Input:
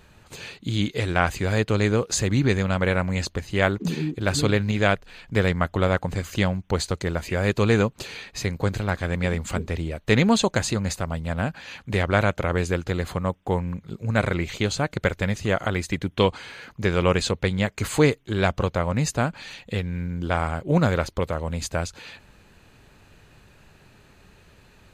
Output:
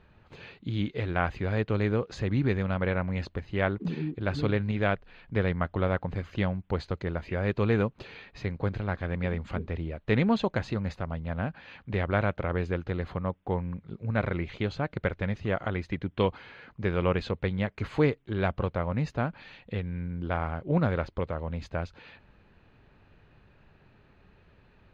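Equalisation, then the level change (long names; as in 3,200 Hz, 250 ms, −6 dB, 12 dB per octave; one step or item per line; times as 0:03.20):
high-frequency loss of the air 300 metres
−5.0 dB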